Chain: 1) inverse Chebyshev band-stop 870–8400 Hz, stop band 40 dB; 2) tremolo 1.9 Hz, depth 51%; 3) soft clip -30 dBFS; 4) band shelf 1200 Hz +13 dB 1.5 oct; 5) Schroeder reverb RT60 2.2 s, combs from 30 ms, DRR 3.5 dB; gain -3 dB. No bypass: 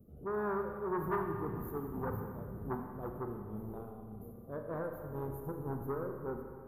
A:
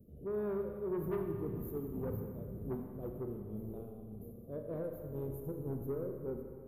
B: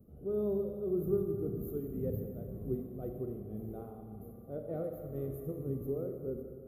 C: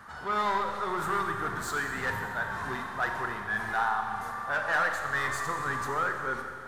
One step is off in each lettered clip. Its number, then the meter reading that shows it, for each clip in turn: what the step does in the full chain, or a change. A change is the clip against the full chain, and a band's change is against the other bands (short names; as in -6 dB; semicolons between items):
4, crest factor change -3.5 dB; 3, distortion -12 dB; 1, 2 kHz band +22.0 dB